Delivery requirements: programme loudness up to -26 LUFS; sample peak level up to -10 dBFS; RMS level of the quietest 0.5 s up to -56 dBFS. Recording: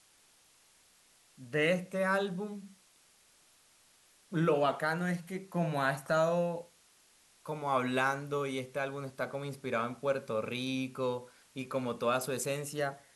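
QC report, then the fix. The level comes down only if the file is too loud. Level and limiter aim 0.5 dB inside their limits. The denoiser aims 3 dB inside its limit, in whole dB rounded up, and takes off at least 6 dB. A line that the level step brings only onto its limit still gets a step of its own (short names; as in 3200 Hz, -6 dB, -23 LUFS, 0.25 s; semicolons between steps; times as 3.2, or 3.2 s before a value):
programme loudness -33.5 LUFS: OK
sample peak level -16.0 dBFS: OK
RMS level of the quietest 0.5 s -65 dBFS: OK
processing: none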